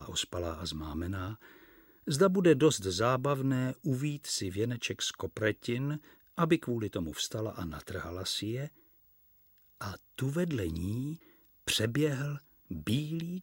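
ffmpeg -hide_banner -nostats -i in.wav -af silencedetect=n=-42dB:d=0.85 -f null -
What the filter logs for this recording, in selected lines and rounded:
silence_start: 8.67
silence_end: 9.81 | silence_duration: 1.13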